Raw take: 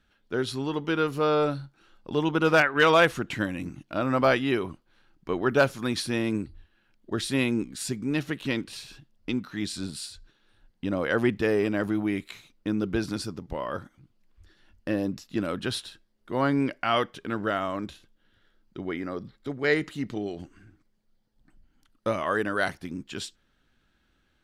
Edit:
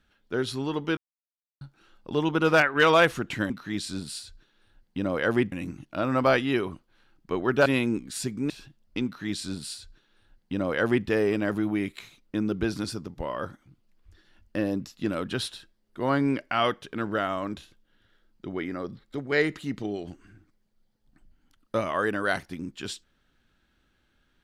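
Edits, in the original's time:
0:00.97–0:01.61: silence
0:05.64–0:07.31: remove
0:08.15–0:08.82: remove
0:09.37–0:11.39: duplicate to 0:03.50

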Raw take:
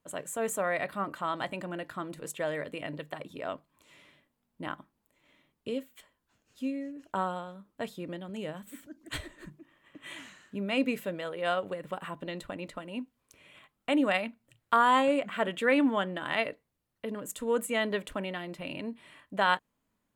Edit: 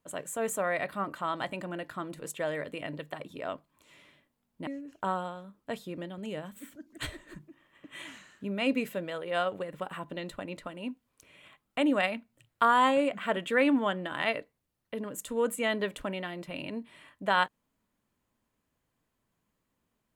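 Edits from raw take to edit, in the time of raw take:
0:04.67–0:06.78: remove

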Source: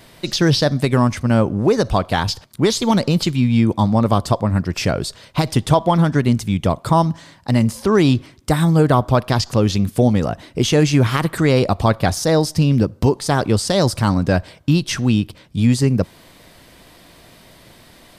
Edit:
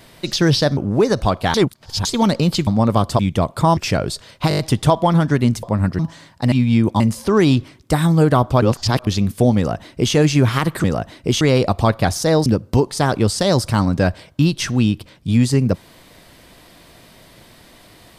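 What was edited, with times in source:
0:00.77–0:01.45: remove
0:02.22–0:02.73: reverse
0:03.35–0:03.83: move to 0:07.58
0:04.35–0:04.71: swap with 0:06.47–0:07.05
0:05.43: stutter 0.02 s, 6 plays
0:09.20–0:09.65: reverse
0:10.15–0:10.72: duplicate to 0:11.42
0:12.47–0:12.75: remove

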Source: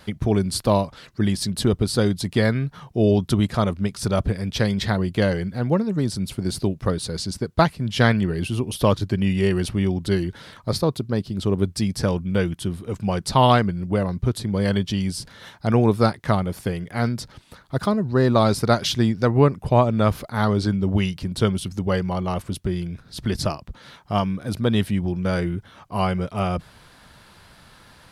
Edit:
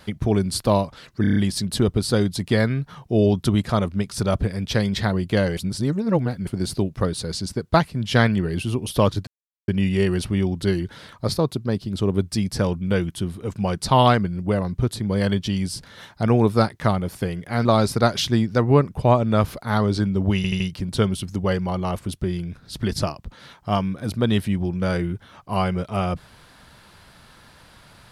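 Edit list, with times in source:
0:01.21: stutter 0.03 s, 6 plays
0:05.42–0:06.32: reverse
0:09.12: splice in silence 0.41 s
0:17.09–0:18.32: remove
0:21.03: stutter 0.08 s, 4 plays

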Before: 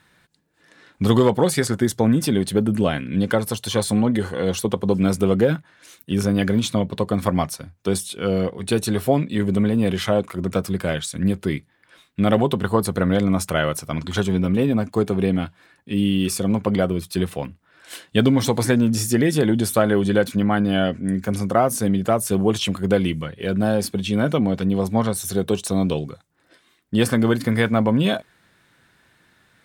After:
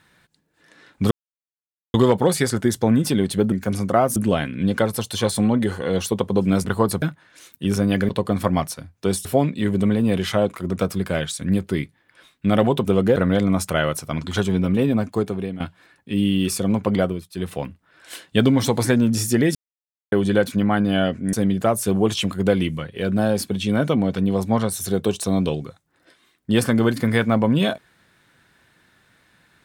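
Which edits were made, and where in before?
0:01.11: splice in silence 0.83 s
0:05.18–0:05.49: swap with 0:12.59–0:12.96
0:06.56–0:06.91: remove
0:08.07–0:08.99: remove
0:14.86–0:15.40: fade out, to −14 dB
0:16.83–0:17.35: duck −13 dB, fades 0.24 s
0:19.35–0:19.92: silence
0:21.13–0:21.77: move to 0:02.69

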